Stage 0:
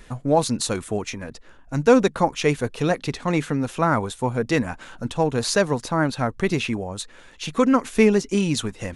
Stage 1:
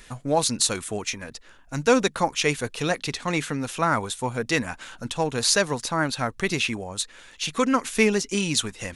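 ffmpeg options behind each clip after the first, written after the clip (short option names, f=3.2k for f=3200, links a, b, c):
-af "tiltshelf=f=1.4k:g=-5.5"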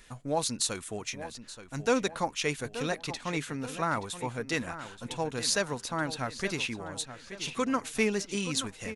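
-filter_complex "[0:a]asplit=2[a][b];[b]adelay=877,lowpass=f=4.5k:p=1,volume=-12dB,asplit=2[c][d];[d]adelay=877,lowpass=f=4.5k:p=1,volume=0.45,asplit=2[e][f];[f]adelay=877,lowpass=f=4.5k:p=1,volume=0.45,asplit=2[g][h];[h]adelay=877,lowpass=f=4.5k:p=1,volume=0.45,asplit=2[i][j];[j]adelay=877,lowpass=f=4.5k:p=1,volume=0.45[k];[a][c][e][g][i][k]amix=inputs=6:normalize=0,volume=-7.5dB"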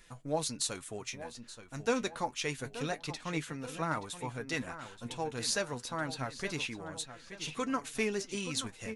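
-af "flanger=delay=5.8:depth=3.2:regen=58:speed=0.28:shape=triangular"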